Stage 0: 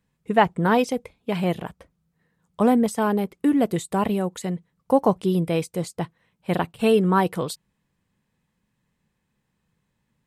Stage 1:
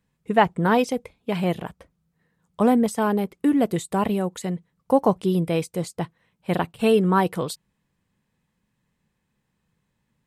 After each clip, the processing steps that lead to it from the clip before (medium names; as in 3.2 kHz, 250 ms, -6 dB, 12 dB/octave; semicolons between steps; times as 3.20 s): no audible change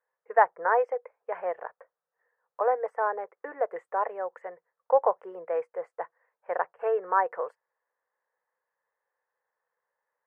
elliptic band-pass 490–1800 Hz, stop band 40 dB; trim -1.5 dB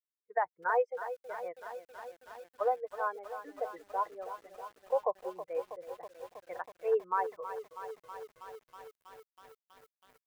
expander on every frequency bin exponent 2; peak limiter -20 dBFS, peak gain reduction 11.5 dB; bit-crushed delay 322 ms, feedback 80%, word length 9-bit, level -11.5 dB